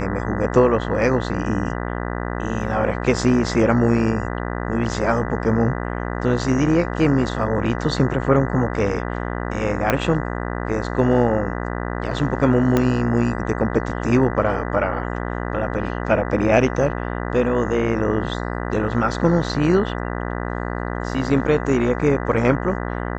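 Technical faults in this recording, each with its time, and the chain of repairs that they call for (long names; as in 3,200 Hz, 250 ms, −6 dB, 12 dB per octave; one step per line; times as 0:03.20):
mains buzz 60 Hz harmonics 33 −26 dBFS
0:09.90: click −4 dBFS
0:12.77: click −5 dBFS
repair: click removal
hum removal 60 Hz, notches 33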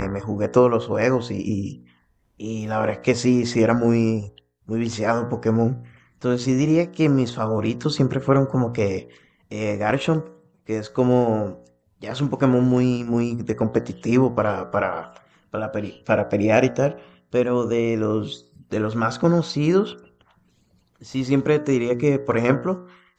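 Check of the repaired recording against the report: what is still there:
0:12.77: click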